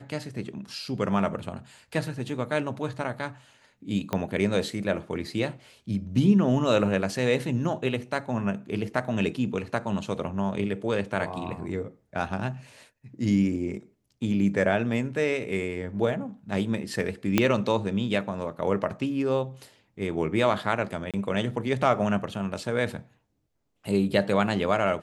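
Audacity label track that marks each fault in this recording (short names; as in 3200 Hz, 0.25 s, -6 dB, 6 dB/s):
4.130000	4.130000	pop -14 dBFS
17.380000	17.380000	pop -6 dBFS
21.110000	21.140000	gap 27 ms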